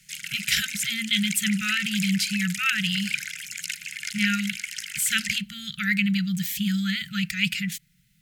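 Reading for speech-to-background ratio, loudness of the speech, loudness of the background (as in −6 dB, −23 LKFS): 6.0 dB, −25.5 LKFS, −31.5 LKFS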